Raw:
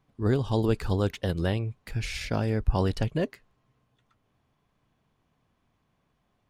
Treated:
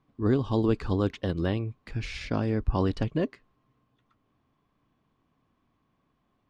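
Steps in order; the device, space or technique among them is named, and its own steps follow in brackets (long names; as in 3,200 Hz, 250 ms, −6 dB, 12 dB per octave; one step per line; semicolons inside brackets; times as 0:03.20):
inside a cardboard box (low-pass filter 5,300 Hz 12 dB per octave; hollow resonant body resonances 280/1,100 Hz, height 7 dB, ringing for 20 ms)
level −2.5 dB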